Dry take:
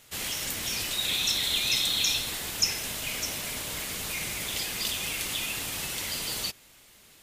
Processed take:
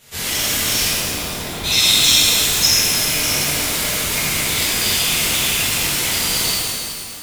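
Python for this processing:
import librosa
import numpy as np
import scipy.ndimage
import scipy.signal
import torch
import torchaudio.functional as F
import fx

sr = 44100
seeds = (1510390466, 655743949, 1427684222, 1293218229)

y = fx.lowpass(x, sr, hz=1100.0, slope=12, at=(0.87, 1.64))
y = fx.rev_shimmer(y, sr, seeds[0], rt60_s=2.2, semitones=12, shimmer_db=-8, drr_db=-11.5)
y = y * librosa.db_to_amplitude(1.5)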